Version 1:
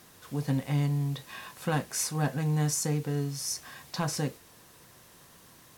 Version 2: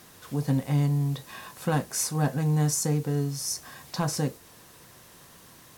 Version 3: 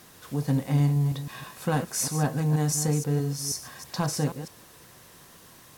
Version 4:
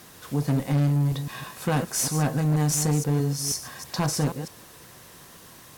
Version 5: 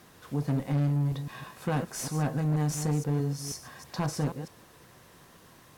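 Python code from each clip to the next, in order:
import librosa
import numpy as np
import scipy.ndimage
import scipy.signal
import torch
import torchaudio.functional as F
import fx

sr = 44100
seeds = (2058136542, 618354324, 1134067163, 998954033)

y1 = fx.dynamic_eq(x, sr, hz=2500.0, q=0.78, threshold_db=-51.0, ratio=4.0, max_db=-5)
y1 = y1 * 10.0 ** (3.5 / 20.0)
y2 = fx.reverse_delay(y1, sr, ms=160, wet_db=-10)
y3 = fx.clip_asym(y2, sr, top_db=-26.5, bottom_db=-19.5)
y3 = y3 * 10.0 ** (3.5 / 20.0)
y4 = fx.high_shelf(y3, sr, hz=3600.0, db=-8.0)
y4 = y4 * 10.0 ** (-4.5 / 20.0)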